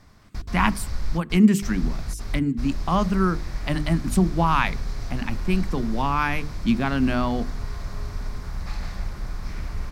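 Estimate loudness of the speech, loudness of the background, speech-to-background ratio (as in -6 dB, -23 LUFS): -24.0 LUFS, -34.0 LUFS, 10.0 dB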